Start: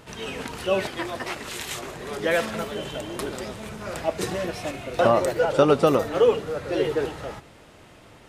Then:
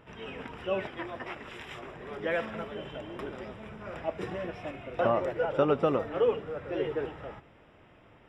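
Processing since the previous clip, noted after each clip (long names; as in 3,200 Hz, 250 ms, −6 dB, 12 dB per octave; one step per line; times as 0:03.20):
Savitzky-Golay smoothing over 25 samples
level −7.5 dB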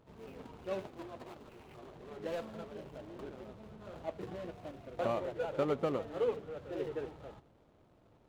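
running median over 25 samples
level −6.5 dB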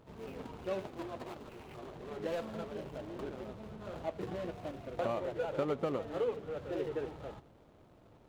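downward compressor 2 to 1, threshold −39 dBFS, peak gain reduction 6.5 dB
level +4.5 dB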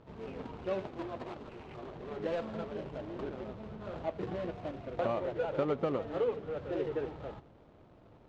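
high-frequency loss of the air 120 metres
level +2.5 dB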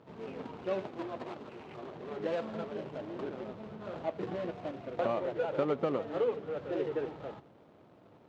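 high-pass filter 140 Hz 12 dB per octave
level +1 dB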